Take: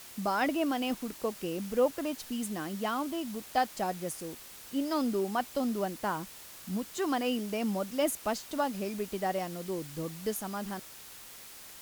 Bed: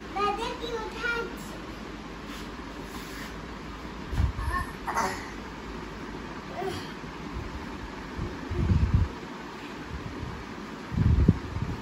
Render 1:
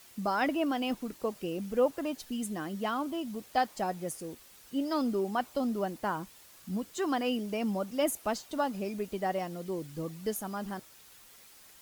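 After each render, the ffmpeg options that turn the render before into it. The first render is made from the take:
-af "afftdn=nr=8:nf=-49"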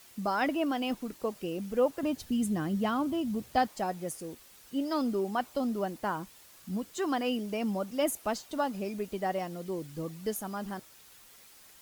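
-filter_complex "[0:a]asettb=1/sr,asplit=3[s0][s1][s2];[s0]atrim=end=2.034[s3];[s1]atrim=start=2.03:end=3.68,asetpts=PTS-STARTPTS,afade=t=in:d=0.004:c=qsin,afade=t=out:st=1.646:d=0.004:c=qsin,equalizer=f=88:w=0.52:g=14.5[s4];[s2]atrim=start=3.676[s5];[s3][s4]acrossfade=d=0.004:c1=hsin:c2=qsin[s6];[s6][s5]acrossfade=d=0.004:c1=qsin:c2=hsin"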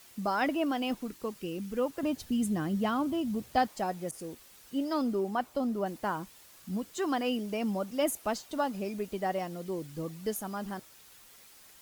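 -filter_complex "[0:a]asettb=1/sr,asplit=3[s0][s1][s2];[s0]atrim=end=1.104[s3];[s1]atrim=start=1.1:end=1.96,asetpts=PTS-STARTPTS,afade=t=in:d=0.004:c=qsin,afade=t=out:st=0.856:d=0.004:c=qsin,equalizer=f=650:t=o:w=0.77:g=-9[s4];[s2]atrim=start=1.956[s5];[s3][s4]acrossfade=d=0.004:c1=hsin:c2=qsin[s6];[s6][s5]acrossfade=d=0.004:c1=qsin:c2=hsin,asettb=1/sr,asplit=3[s7][s8][s9];[s7]atrim=end=4.114[s10];[s8]atrim=start=4.11:end=5.86,asetpts=PTS-STARTPTS,afade=t=in:d=0.004:c=qsin,afade=t=out:st=1.746:d=0.004:c=qsin,adynamicequalizer=threshold=0.00398:dfrequency=1900:dqfactor=0.7:tfrequency=1900:tqfactor=0.7:attack=5:release=100:ratio=0.375:range=2.5:mode=cutabove:tftype=highshelf[s11];[s9]atrim=start=5.856[s12];[s10][s11]acrossfade=d=0.004:c1=hsin:c2=qsin[s13];[s13][s12]acrossfade=d=0.004:c1=qsin:c2=hsin"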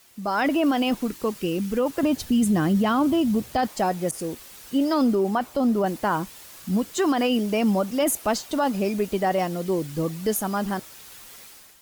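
-af "dynaudnorm=f=110:g=7:m=3.55,alimiter=limit=0.2:level=0:latency=1:release=18"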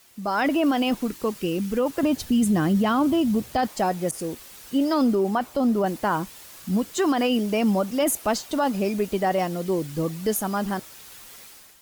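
-af anull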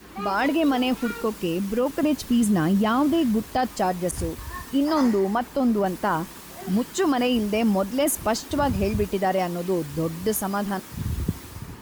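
-filter_complex "[1:a]volume=0.501[s0];[0:a][s0]amix=inputs=2:normalize=0"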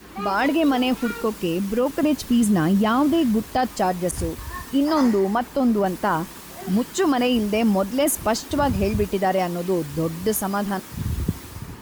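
-af "volume=1.26"

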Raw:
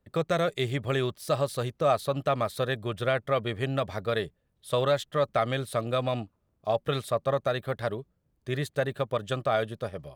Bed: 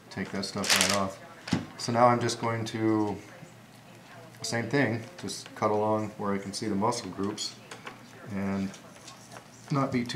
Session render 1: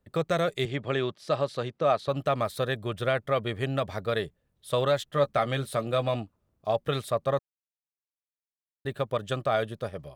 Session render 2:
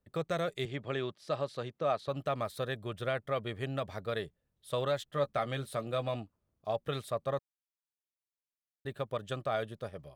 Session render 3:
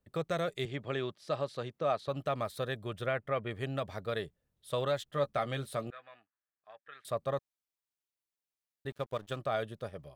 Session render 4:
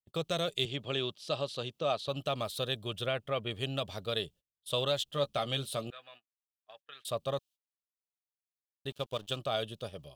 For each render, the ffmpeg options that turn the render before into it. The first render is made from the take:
-filter_complex "[0:a]asettb=1/sr,asplit=3[s0][s1][s2];[s0]atrim=end=0.654[s3];[s1]atrim=start=0.65:end=2.08,asetpts=PTS-STARTPTS,afade=t=in:d=0.004:c=qsin,afade=t=out:st=1.426:d=0.004:c=qsin,highpass=140,lowpass=4900[s4];[s2]atrim=start=2.076[s5];[s3][s4]acrossfade=d=0.004:c1=hsin:c2=qsin[s6];[s6][s5]acrossfade=d=0.004:c1=qsin:c2=hsin,asettb=1/sr,asplit=3[s7][s8][s9];[s7]atrim=end=5.104[s10];[s8]atrim=start=5.1:end=6.16,asetpts=PTS-STARTPTS,afade=t=in:d=0.004:c=qsin,afade=t=out:st=1.056:d=0.004:c=qsin,asplit=2[s11][s12];[s12]adelay=14,volume=0.355[s13];[s11][s13]amix=inputs=2:normalize=0,atrim=end_sample=46746[s14];[s9]atrim=start=6.156[s15];[s10][s14]acrossfade=d=0.004:c1=hsin:c2=qsin[s16];[s16][s15]acrossfade=d=0.004:c1=qsin:c2=hsin,asplit=3[s17][s18][s19];[s17]atrim=end=7.39,asetpts=PTS-STARTPTS,afade=t=out:st=7.386:d=0.004:c=hsin[s20];[s18]atrim=start=7.39:end=8.85,asetpts=PTS-STARTPTS,volume=0[s21];[s19]atrim=start=8.85,asetpts=PTS-STARTPTS,afade=t=in:d=0.004:c=hsin[s22];[s20][s21][s22]concat=n=3:v=0:a=1"
-af "volume=0.447"
-filter_complex "[0:a]asettb=1/sr,asplit=3[s0][s1][s2];[s0]atrim=end=3.064[s3];[s1]atrim=start=3.06:end=3.51,asetpts=PTS-STARTPTS,afade=t=in:d=0.004:c=qsin,afade=t=out:st=0.446:d=0.004:c=qsin,highshelf=f=3100:t=q:w=1.5:g=-7.5[s4];[s2]atrim=start=3.506[s5];[s3][s4]acrossfade=d=0.004:c1=hsin:c2=qsin[s6];[s6][s5]acrossfade=d=0.004:c1=qsin:c2=hsin,asettb=1/sr,asplit=3[s7][s8][s9];[s7]atrim=end=5.904[s10];[s8]atrim=start=5.9:end=7.05,asetpts=PTS-STARTPTS,afade=t=in:d=0.004:c=qsin,afade=t=out:st=1.146:d=0.004:c=qsin,bandpass=f=1700:t=q:w=5[s11];[s9]atrim=start=7.046[s12];[s10][s11]acrossfade=d=0.004:c1=hsin:c2=qsin[s13];[s13][s12]acrossfade=d=0.004:c1=qsin:c2=hsin,asettb=1/sr,asplit=3[s14][s15][s16];[s14]atrim=end=8.904[s17];[s15]atrim=start=8.9:end=9.39,asetpts=PTS-STARTPTS,afade=t=in:d=0.004:c=qsin,afade=t=out:st=0.486:d=0.004:c=qsin,aeval=exprs='sgn(val(0))*max(abs(val(0))-0.00251,0)':c=same[s18];[s16]atrim=start=9.386[s19];[s17][s18]acrossfade=d=0.004:c1=hsin:c2=qsin[s20];[s20][s19]acrossfade=d=0.004:c1=qsin:c2=hsin"
-af "agate=range=0.0447:threshold=0.00158:ratio=16:detection=peak,highshelf=f=2400:t=q:w=3:g=6.5"

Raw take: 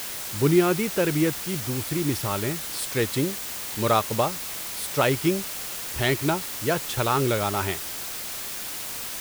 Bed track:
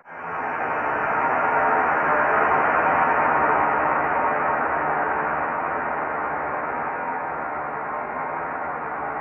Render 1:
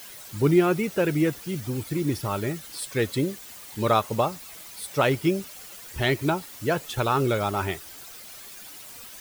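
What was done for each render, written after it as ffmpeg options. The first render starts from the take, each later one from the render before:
-af "afftdn=nr=12:nf=-34"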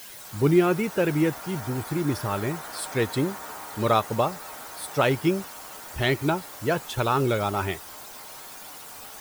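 -filter_complex "[1:a]volume=0.0944[s0];[0:a][s0]amix=inputs=2:normalize=0"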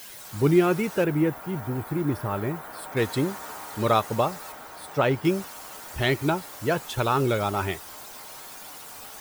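-filter_complex "[0:a]asettb=1/sr,asplit=3[s0][s1][s2];[s0]atrim=end=1.044[s3];[s1]atrim=start=1.04:end=2.97,asetpts=PTS-STARTPTS,afade=t=in:d=0.004:c=qsin,afade=t=out:st=1.926:d=0.004:c=qsin,equalizer=f=5900:w=0.57:g=-12.5[s4];[s2]atrim=start=2.966[s5];[s3][s4]acrossfade=d=0.004:c1=hsin:c2=qsin[s6];[s6][s5]acrossfade=d=0.004:c1=qsin:c2=hsin,asettb=1/sr,asplit=3[s7][s8][s9];[s7]atrim=end=4.524[s10];[s8]atrim=start=4.52:end=5.25,asetpts=PTS-STARTPTS,afade=t=in:d=0.004:c=qsin,afade=t=out:st=0.726:d=0.004:c=qsin,equalizer=f=9800:t=o:w=2.7:g=-8.5[s11];[s9]atrim=start=5.246[s12];[s10][s11]acrossfade=d=0.004:c1=hsin:c2=qsin[s13];[s13][s12]acrossfade=d=0.004:c1=qsin:c2=hsin"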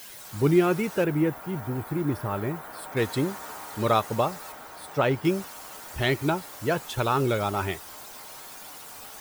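-af "volume=0.891"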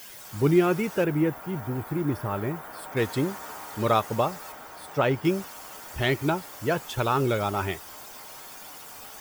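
-af "equalizer=f=9300:w=3.4:g=-3,bandreject=f=4000:w=15"

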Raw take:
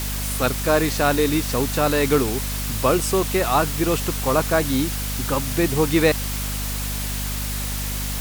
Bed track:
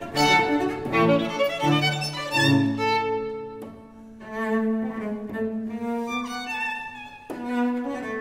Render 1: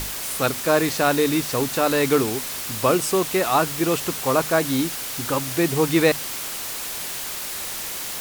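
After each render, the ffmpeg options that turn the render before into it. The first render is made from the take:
-af "bandreject=f=50:t=h:w=6,bandreject=f=100:t=h:w=6,bandreject=f=150:t=h:w=6,bandreject=f=200:t=h:w=6,bandreject=f=250:t=h:w=6"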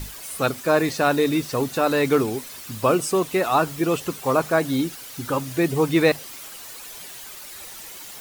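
-af "afftdn=nr=11:nf=-31"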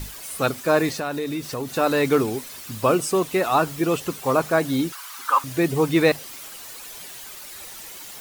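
-filter_complex "[0:a]asettb=1/sr,asplit=3[s0][s1][s2];[s0]atrim=end=0.984[s3];[s1]atrim=start=0.98:end=1.75,asetpts=PTS-STARTPTS,afade=t=in:d=0.004:c=qsin,afade=t=out:st=0.766:d=0.004:c=qsin,acompressor=threshold=0.0447:ratio=2.5:attack=3.2:release=140:knee=1:detection=peak[s4];[s2]atrim=start=1.746[s5];[s3][s4]acrossfade=d=0.004:c1=hsin:c2=qsin[s6];[s6][s5]acrossfade=d=0.004:c1=qsin:c2=hsin,asettb=1/sr,asplit=3[s7][s8][s9];[s7]atrim=end=4.924[s10];[s8]atrim=start=4.92:end=5.44,asetpts=PTS-STARTPTS,afade=t=in:d=0.004:c=qsin,afade=t=out:st=0.516:d=0.004:c=qsin,highpass=f=1100:t=q:w=4.1[s11];[s9]atrim=start=5.436[s12];[s10][s11]acrossfade=d=0.004:c1=hsin:c2=qsin[s13];[s13][s12]acrossfade=d=0.004:c1=qsin:c2=hsin"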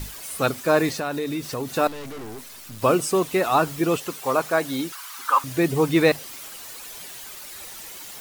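-filter_complex "[0:a]asettb=1/sr,asplit=3[s0][s1][s2];[s0]atrim=end=1.874[s3];[s1]atrim=start=1.87:end=2.82,asetpts=PTS-STARTPTS,afade=t=in:d=0.004:c=qsin,afade=t=out:st=0.946:d=0.004:c=qsin,aeval=exprs='(tanh(56.2*val(0)+0.65)-tanh(0.65))/56.2':c=same[s4];[s2]atrim=start=2.816[s5];[s3][s4]acrossfade=d=0.004:c1=hsin:c2=qsin[s6];[s6][s5]acrossfade=d=0.004:c1=qsin:c2=hsin,asettb=1/sr,asplit=3[s7][s8][s9];[s7]atrim=end=3.974[s10];[s8]atrim=start=3.97:end=5.17,asetpts=PTS-STARTPTS,afade=t=in:d=0.004:c=qsin,afade=t=out:st=1.196:d=0.004:c=qsin,lowshelf=f=260:g=-10.5[s11];[s9]atrim=start=5.166[s12];[s10][s11]acrossfade=d=0.004:c1=hsin:c2=qsin[s13];[s13][s12]acrossfade=d=0.004:c1=qsin:c2=hsin"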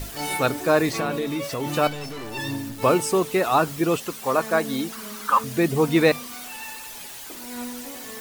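-filter_complex "[1:a]volume=0.299[s0];[0:a][s0]amix=inputs=2:normalize=0"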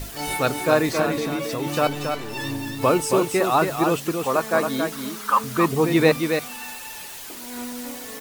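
-af "aecho=1:1:274:0.531"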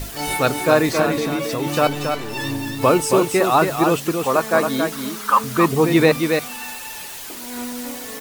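-af "volume=1.5,alimiter=limit=0.794:level=0:latency=1"

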